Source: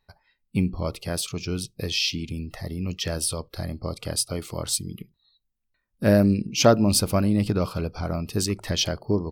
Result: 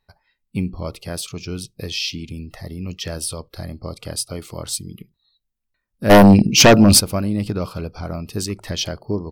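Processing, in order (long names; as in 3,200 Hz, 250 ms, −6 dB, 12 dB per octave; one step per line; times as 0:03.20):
0:06.09–0:06.99: sine wavefolder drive 13 dB → 7 dB, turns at −4 dBFS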